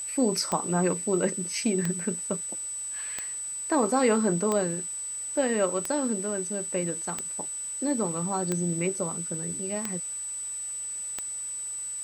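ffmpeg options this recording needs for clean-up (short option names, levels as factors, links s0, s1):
-af "adeclick=t=4,bandreject=f=8000:w=30,afwtdn=0.0032"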